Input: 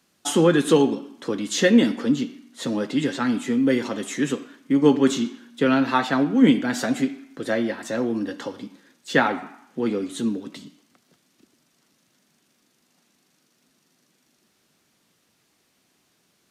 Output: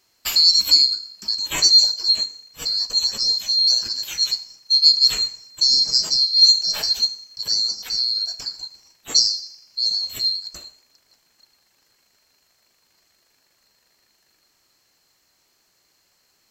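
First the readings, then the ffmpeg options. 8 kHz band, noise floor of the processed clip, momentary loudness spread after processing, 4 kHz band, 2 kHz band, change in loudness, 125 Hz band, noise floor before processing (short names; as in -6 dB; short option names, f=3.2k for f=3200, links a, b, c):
+9.5 dB, -65 dBFS, 15 LU, +20.0 dB, -10.0 dB, +6.0 dB, under -15 dB, -67 dBFS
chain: -af "afftfilt=real='real(if(lt(b,736),b+184*(1-2*mod(floor(b/184),2)),b),0)':imag='imag(if(lt(b,736),b+184*(1-2*mod(floor(b/184),2)),b),0)':win_size=2048:overlap=0.75,volume=2dB"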